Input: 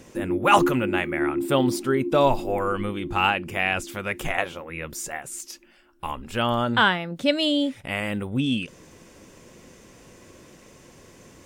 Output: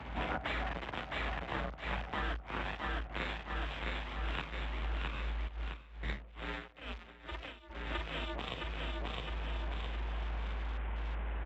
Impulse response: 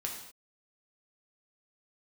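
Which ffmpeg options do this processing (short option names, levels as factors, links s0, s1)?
-filter_complex "[0:a]asplit=2[s0][s1];[s1]highpass=f=720:p=1,volume=14.1,asoftclip=type=tanh:threshold=0.75[s2];[s0][s2]amix=inputs=2:normalize=0,lowpass=f=1200:p=1,volume=0.501,aeval=exprs='abs(val(0))':c=same,asplit=2[s3][s4];[s4]adelay=47,volume=0.708[s5];[s3][s5]amix=inputs=2:normalize=0,aeval=exprs='0.891*(cos(1*acos(clip(val(0)/0.891,-1,1)))-cos(1*PI/2))+0.00891*(cos(3*acos(clip(val(0)/0.891,-1,1)))-cos(3*PI/2))+0.0141*(cos(6*acos(clip(val(0)/0.891,-1,1)))-cos(6*PI/2))+0.178*(cos(8*acos(clip(val(0)/0.891,-1,1)))-cos(8*PI/2))':c=same,aecho=1:1:662|1324|1986|2648|3310:0.501|0.195|0.0762|0.0297|0.0116,acompressor=threshold=0.0282:ratio=10,aresample=8000,aresample=44100,aeval=exprs='sgn(val(0))*max(abs(val(0))-0.00188,0)':c=same,afreqshift=54,afwtdn=0.00224,asplit=3[s6][s7][s8];[s6]afade=t=out:st=5.47:d=0.02[s9];[s7]aeval=exprs='val(0)*pow(10,-18*(0.5-0.5*cos(2*PI*2.3*n/s))/20)':c=same,afade=t=in:st=5.47:d=0.02,afade=t=out:st=7.69:d=0.02[s10];[s8]afade=t=in:st=7.69:d=0.02[s11];[s9][s10][s11]amix=inputs=3:normalize=0,volume=0.794"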